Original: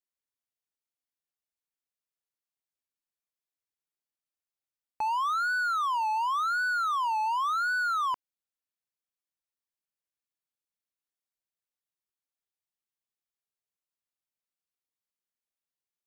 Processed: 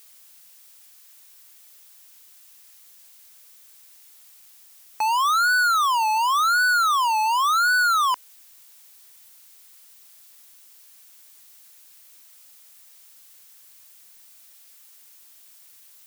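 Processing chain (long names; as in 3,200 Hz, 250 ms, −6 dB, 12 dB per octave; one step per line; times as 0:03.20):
spectral tilt +4 dB per octave
in parallel at −1 dB: brickwall limiter −30.5 dBFS, peak gain reduction 8.5 dB
on the sum: background noise blue −55 dBFS
level +4 dB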